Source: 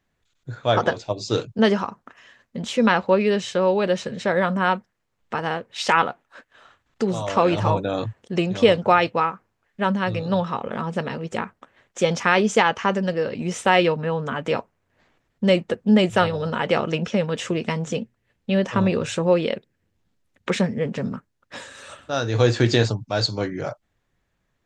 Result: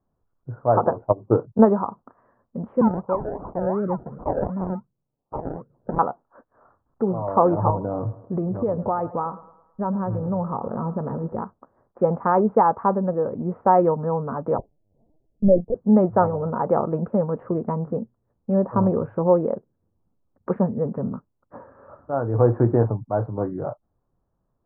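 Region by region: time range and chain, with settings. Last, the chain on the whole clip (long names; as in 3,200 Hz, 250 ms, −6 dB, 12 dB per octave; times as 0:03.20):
0:01.05–0:01.65: low-pass filter 4,600 Hz + transient designer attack +6 dB, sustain −6 dB
0:02.81–0:05.99: two-band tremolo in antiphase 1 Hz, depth 100%, crossover 510 Hz + parametric band 140 Hz +13.5 dB 0.39 octaves + sample-and-hold swept by an LFO 32×, swing 60% 2.7 Hz
0:07.70–0:11.42: low-shelf EQ 140 Hz +7.5 dB + downward compressor 3 to 1, threshold −22 dBFS + feedback echo with a high-pass in the loop 107 ms, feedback 48%, high-pass 170 Hz, level −14.5 dB
0:14.58–0:15.75: Butterworth low-pass 700 Hz + low-shelf EQ 180 Hz +6.5 dB + linear-prediction vocoder at 8 kHz pitch kept
whole clip: adaptive Wiener filter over 9 samples; Butterworth low-pass 1,200 Hz 36 dB per octave; dynamic equaliser 860 Hz, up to +4 dB, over −31 dBFS, Q 1.8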